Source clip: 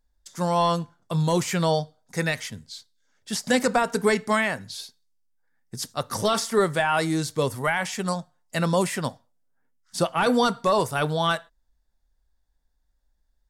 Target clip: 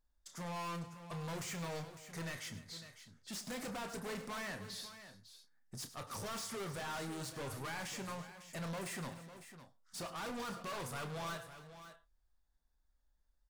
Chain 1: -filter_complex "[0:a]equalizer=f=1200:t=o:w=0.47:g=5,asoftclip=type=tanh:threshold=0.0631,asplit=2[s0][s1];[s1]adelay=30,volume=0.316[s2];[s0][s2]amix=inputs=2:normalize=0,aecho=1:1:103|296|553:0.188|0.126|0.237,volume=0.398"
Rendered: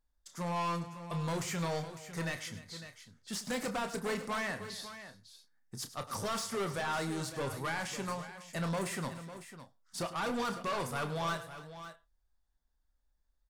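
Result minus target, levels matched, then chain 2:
saturation: distortion -5 dB
-filter_complex "[0:a]equalizer=f=1200:t=o:w=0.47:g=5,asoftclip=type=tanh:threshold=0.0211,asplit=2[s0][s1];[s1]adelay=30,volume=0.316[s2];[s0][s2]amix=inputs=2:normalize=0,aecho=1:1:103|296|553:0.188|0.126|0.237,volume=0.398"

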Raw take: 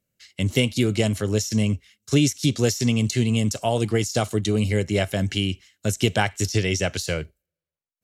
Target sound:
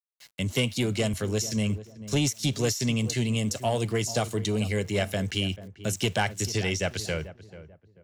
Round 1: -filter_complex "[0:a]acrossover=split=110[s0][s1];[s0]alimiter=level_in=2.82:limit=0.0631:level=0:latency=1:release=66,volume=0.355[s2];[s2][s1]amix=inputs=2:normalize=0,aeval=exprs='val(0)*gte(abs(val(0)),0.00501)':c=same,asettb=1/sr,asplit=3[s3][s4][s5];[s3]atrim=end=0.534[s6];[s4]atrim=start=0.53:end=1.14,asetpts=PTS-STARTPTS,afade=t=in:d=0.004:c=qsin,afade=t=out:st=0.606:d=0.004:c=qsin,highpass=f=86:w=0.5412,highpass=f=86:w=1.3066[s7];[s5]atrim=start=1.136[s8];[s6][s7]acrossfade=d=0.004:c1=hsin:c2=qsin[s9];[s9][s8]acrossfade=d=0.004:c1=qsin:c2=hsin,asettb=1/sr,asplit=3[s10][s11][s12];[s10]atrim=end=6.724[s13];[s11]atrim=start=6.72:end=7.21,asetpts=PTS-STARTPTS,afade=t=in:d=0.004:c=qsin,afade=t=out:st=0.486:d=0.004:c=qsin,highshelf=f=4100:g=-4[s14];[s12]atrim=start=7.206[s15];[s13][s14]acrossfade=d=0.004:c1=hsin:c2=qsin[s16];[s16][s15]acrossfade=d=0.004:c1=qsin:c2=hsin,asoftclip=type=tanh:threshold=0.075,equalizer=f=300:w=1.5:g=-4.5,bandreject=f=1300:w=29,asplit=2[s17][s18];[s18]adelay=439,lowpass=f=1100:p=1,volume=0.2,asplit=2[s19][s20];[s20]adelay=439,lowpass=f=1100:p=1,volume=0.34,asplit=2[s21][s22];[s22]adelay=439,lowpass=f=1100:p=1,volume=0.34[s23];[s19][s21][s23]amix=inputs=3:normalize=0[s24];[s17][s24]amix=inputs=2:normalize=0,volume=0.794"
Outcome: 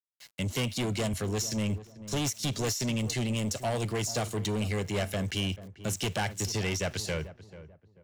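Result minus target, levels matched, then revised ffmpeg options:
saturation: distortion +11 dB
-filter_complex "[0:a]acrossover=split=110[s0][s1];[s0]alimiter=level_in=2.82:limit=0.0631:level=0:latency=1:release=66,volume=0.355[s2];[s2][s1]amix=inputs=2:normalize=0,aeval=exprs='val(0)*gte(abs(val(0)),0.00501)':c=same,asettb=1/sr,asplit=3[s3][s4][s5];[s3]atrim=end=0.534[s6];[s4]atrim=start=0.53:end=1.14,asetpts=PTS-STARTPTS,afade=t=in:d=0.004:c=qsin,afade=t=out:st=0.606:d=0.004:c=qsin,highpass=f=86:w=0.5412,highpass=f=86:w=1.3066[s7];[s5]atrim=start=1.136[s8];[s6][s7]acrossfade=d=0.004:c1=hsin:c2=qsin[s9];[s9][s8]acrossfade=d=0.004:c1=qsin:c2=hsin,asettb=1/sr,asplit=3[s10][s11][s12];[s10]atrim=end=6.724[s13];[s11]atrim=start=6.72:end=7.21,asetpts=PTS-STARTPTS,afade=t=in:d=0.004:c=qsin,afade=t=out:st=0.486:d=0.004:c=qsin,highshelf=f=4100:g=-4[s14];[s12]atrim=start=7.206[s15];[s13][s14]acrossfade=d=0.004:c1=hsin:c2=qsin[s16];[s16][s15]acrossfade=d=0.004:c1=qsin:c2=hsin,asoftclip=type=tanh:threshold=0.251,equalizer=f=300:w=1.5:g=-4.5,bandreject=f=1300:w=29,asplit=2[s17][s18];[s18]adelay=439,lowpass=f=1100:p=1,volume=0.2,asplit=2[s19][s20];[s20]adelay=439,lowpass=f=1100:p=1,volume=0.34,asplit=2[s21][s22];[s22]adelay=439,lowpass=f=1100:p=1,volume=0.34[s23];[s19][s21][s23]amix=inputs=3:normalize=0[s24];[s17][s24]amix=inputs=2:normalize=0,volume=0.794"

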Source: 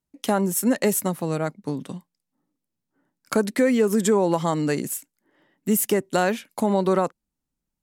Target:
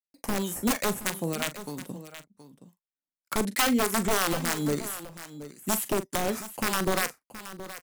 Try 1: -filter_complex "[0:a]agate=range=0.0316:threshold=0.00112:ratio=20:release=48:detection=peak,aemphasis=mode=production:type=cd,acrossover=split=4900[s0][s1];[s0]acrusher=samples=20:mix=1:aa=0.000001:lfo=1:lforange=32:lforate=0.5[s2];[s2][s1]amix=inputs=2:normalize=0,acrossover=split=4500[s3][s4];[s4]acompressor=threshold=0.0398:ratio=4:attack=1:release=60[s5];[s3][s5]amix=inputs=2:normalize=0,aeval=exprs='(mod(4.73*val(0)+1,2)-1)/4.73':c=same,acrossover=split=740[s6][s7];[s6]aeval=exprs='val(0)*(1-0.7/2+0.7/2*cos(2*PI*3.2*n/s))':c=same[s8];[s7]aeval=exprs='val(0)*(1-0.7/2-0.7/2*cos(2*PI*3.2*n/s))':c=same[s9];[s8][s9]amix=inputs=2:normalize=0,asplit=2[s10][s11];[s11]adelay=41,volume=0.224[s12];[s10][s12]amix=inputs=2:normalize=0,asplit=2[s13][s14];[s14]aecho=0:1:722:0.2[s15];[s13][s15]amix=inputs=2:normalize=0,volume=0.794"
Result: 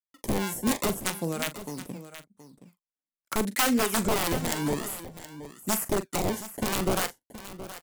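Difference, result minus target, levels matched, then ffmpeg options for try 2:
decimation with a swept rate: distortion +9 dB
-filter_complex "[0:a]agate=range=0.0316:threshold=0.00112:ratio=20:release=48:detection=peak,aemphasis=mode=production:type=cd,acrossover=split=4900[s0][s1];[s0]acrusher=samples=7:mix=1:aa=0.000001:lfo=1:lforange=11.2:lforate=0.5[s2];[s2][s1]amix=inputs=2:normalize=0,acrossover=split=4500[s3][s4];[s4]acompressor=threshold=0.0398:ratio=4:attack=1:release=60[s5];[s3][s5]amix=inputs=2:normalize=0,aeval=exprs='(mod(4.73*val(0)+1,2)-1)/4.73':c=same,acrossover=split=740[s6][s7];[s6]aeval=exprs='val(0)*(1-0.7/2+0.7/2*cos(2*PI*3.2*n/s))':c=same[s8];[s7]aeval=exprs='val(0)*(1-0.7/2-0.7/2*cos(2*PI*3.2*n/s))':c=same[s9];[s8][s9]amix=inputs=2:normalize=0,asplit=2[s10][s11];[s11]adelay=41,volume=0.224[s12];[s10][s12]amix=inputs=2:normalize=0,asplit=2[s13][s14];[s14]aecho=0:1:722:0.2[s15];[s13][s15]amix=inputs=2:normalize=0,volume=0.794"

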